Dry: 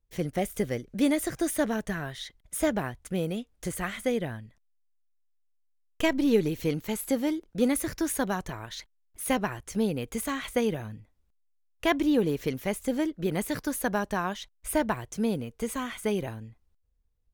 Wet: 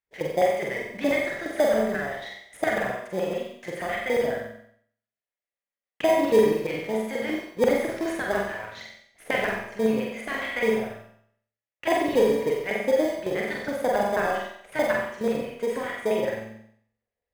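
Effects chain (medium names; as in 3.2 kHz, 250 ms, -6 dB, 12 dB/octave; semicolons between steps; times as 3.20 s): LFO band-pass square 7.2 Hz 590–1900 Hz; dynamic bell 110 Hz, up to +5 dB, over -55 dBFS, Q 0.98; in parallel at -10.5 dB: sample-rate reducer 1.4 kHz, jitter 0%; 10.90–12.04 s: on the sum: comb of notches 230 Hz; on a send: flutter echo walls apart 7.8 m, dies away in 0.59 s; on the sum: Schroeder reverb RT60 0.53 s, combs from 32 ms, DRR 1 dB; trim +6.5 dB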